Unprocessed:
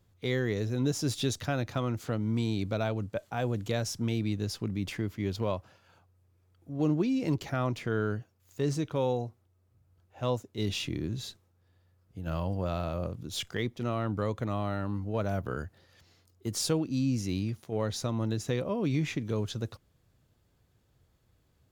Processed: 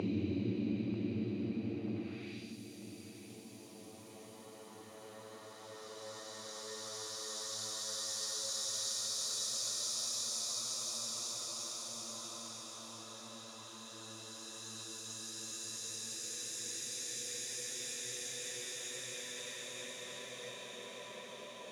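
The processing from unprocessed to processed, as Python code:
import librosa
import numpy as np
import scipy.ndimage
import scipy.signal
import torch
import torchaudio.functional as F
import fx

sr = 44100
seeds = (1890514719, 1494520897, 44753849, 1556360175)

y = fx.paulstretch(x, sr, seeds[0], factor=17.0, window_s=0.5, from_s=17.42)
y = fx.filter_sweep_bandpass(y, sr, from_hz=640.0, to_hz=8000.0, start_s=1.94, end_s=2.59, q=0.84)
y = fx.echo_feedback(y, sr, ms=941, feedback_pct=55, wet_db=-12.5)
y = y * librosa.db_to_amplitude(4.5)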